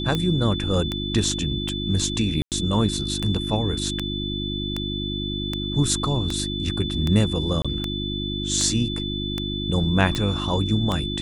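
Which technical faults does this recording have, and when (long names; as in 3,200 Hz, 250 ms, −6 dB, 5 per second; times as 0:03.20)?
mains hum 50 Hz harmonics 7 −29 dBFS
scratch tick 78 rpm −11 dBFS
whistle 3,500 Hz −30 dBFS
0:02.42–0:02.52: drop-out 98 ms
0:07.62–0:07.65: drop-out 26 ms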